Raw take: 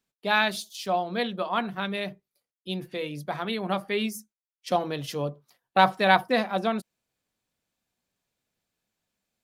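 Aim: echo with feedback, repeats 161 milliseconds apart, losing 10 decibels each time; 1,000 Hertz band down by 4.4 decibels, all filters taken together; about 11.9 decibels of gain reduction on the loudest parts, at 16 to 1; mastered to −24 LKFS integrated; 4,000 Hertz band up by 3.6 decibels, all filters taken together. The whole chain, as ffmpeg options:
ffmpeg -i in.wav -af "equalizer=frequency=1000:width_type=o:gain=-6.5,equalizer=frequency=4000:width_type=o:gain=4.5,acompressor=threshold=-27dB:ratio=16,aecho=1:1:161|322|483|644:0.316|0.101|0.0324|0.0104,volume=9.5dB" out.wav

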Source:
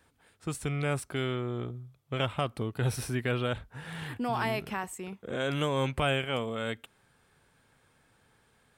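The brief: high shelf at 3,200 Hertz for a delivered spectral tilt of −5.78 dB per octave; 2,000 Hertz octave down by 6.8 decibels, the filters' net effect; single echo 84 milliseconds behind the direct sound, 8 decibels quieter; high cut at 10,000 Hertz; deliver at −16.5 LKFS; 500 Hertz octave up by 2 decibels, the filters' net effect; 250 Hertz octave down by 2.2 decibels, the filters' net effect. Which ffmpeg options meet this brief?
ffmpeg -i in.wav -af "lowpass=10000,equalizer=frequency=250:width_type=o:gain=-4,equalizer=frequency=500:width_type=o:gain=4,equalizer=frequency=2000:width_type=o:gain=-7.5,highshelf=frequency=3200:gain=-6.5,aecho=1:1:84:0.398,volume=16dB" out.wav

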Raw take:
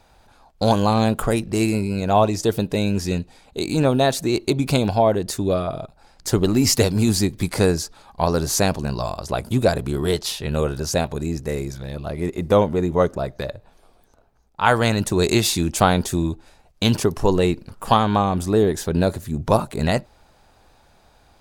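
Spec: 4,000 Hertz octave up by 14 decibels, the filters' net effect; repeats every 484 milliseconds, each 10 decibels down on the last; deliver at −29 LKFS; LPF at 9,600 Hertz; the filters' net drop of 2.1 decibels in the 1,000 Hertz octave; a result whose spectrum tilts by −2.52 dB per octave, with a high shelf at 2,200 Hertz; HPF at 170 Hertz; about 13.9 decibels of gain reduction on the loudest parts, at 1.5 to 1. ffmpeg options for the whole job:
ffmpeg -i in.wav -af "highpass=170,lowpass=9600,equalizer=frequency=1000:width_type=o:gain=-5,highshelf=frequency=2200:gain=8.5,equalizer=frequency=4000:width_type=o:gain=9,acompressor=threshold=-45dB:ratio=1.5,aecho=1:1:484|968|1452|1936:0.316|0.101|0.0324|0.0104,volume=-1dB" out.wav

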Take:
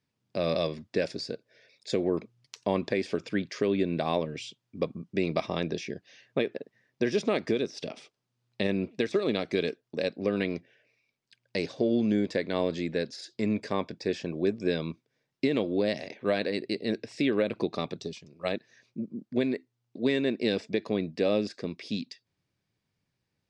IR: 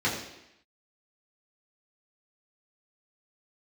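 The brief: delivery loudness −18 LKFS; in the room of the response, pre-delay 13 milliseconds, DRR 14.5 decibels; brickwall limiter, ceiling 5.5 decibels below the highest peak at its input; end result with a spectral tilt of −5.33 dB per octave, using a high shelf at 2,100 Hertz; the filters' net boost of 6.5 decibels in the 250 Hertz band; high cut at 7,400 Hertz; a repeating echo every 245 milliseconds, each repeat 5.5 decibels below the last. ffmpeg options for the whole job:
-filter_complex "[0:a]lowpass=7400,equalizer=frequency=250:width_type=o:gain=8,highshelf=frequency=2100:gain=4.5,alimiter=limit=-14.5dB:level=0:latency=1,aecho=1:1:245|490|735|980|1225|1470|1715:0.531|0.281|0.149|0.079|0.0419|0.0222|0.0118,asplit=2[link_01][link_02];[1:a]atrim=start_sample=2205,adelay=13[link_03];[link_02][link_03]afir=irnorm=-1:irlink=0,volume=-26.5dB[link_04];[link_01][link_04]amix=inputs=2:normalize=0,volume=8.5dB"

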